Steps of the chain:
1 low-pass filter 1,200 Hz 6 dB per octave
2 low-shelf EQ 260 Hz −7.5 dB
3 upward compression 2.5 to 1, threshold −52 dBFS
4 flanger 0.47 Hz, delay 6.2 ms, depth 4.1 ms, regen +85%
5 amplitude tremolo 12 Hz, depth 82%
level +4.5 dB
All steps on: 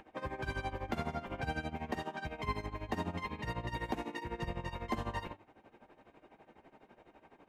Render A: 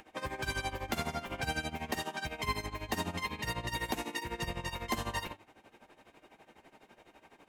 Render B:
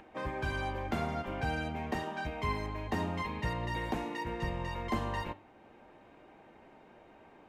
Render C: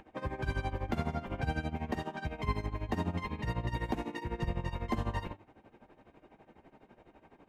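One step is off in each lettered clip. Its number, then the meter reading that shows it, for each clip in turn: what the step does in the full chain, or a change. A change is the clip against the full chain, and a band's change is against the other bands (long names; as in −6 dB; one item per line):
1, 8 kHz band +14.0 dB
5, change in crest factor −2.0 dB
2, 125 Hz band +6.0 dB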